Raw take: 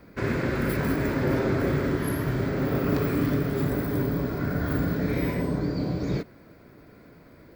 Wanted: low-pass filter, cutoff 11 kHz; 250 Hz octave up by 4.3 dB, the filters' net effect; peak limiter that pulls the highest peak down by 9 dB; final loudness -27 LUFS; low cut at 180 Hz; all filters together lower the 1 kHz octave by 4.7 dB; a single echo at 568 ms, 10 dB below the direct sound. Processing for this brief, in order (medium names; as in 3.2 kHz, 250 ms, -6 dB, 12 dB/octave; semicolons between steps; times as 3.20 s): high-pass 180 Hz; low-pass 11 kHz; peaking EQ 250 Hz +7 dB; peaking EQ 1 kHz -7 dB; peak limiter -20 dBFS; delay 568 ms -10 dB; trim +1 dB